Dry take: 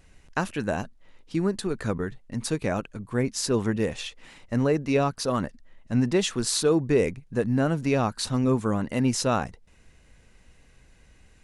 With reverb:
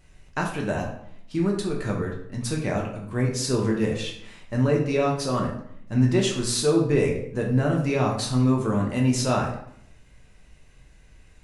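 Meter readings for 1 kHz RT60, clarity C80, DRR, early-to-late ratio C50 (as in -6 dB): 0.65 s, 9.0 dB, -1.0 dB, 6.0 dB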